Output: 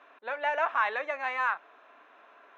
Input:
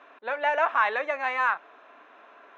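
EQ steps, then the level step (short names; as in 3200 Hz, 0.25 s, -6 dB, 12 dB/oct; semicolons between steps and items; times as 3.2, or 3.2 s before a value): low shelf 410 Hz -4 dB; -3.5 dB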